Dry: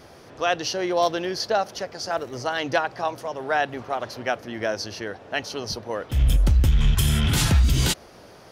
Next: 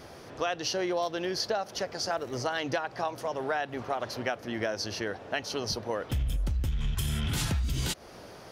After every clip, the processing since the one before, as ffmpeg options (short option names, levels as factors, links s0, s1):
-af "acompressor=threshold=0.0447:ratio=6"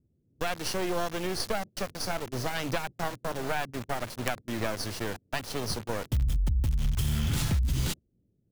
-filter_complex "[0:a]agate=range=0.112:threshold=0.0158:ratio=16:detection=peak,acrossover=split=280[s0][s1];[s1]acrusher=bits=4:dc=4:mix=0:aa=0.000001[s2];[s0][s2]amix=inputs=2:normalize=0,volume=1.41"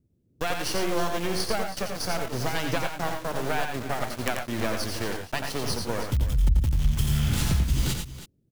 -af "aecho=1:1:88|110|322:0.501|0.335|0.2,volume=1.26"